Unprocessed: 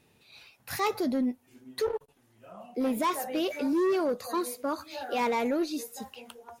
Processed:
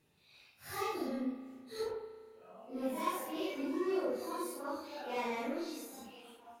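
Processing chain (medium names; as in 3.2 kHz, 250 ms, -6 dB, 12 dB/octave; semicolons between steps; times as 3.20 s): phase randomisation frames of 200 ms; 1.94–2.66 s: high-pass 170 Hz 12 dB/octave; spring tank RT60 2 s, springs 34 ms, chirp 35 ms, DRR 9 dB; trim -8.5 dB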